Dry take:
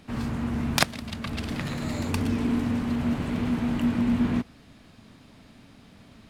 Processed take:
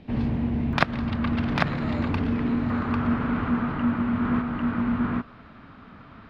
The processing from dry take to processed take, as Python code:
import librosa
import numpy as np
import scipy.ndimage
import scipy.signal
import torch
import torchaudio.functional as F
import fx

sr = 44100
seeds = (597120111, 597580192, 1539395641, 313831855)

y = fx.air_absorb(x, sr, metres=330.0)
y = y + 10.0 ** (-4.0 / 20.0) * np.pad(y, (int(797 * sr / 1000.0), 0))[:len(y)]
y = fx.rider(y, sr, range_db=10, speed_s=0.5)
y = fx.peak_eq(y, sr, hz=1300.0, db=fx.steps((0.0, -9.5), (0.73, 4.0), (2.7, 13.5)), octaves=0.8)
y = F.gain(torch.from_numpy(y), 1.0).numpy()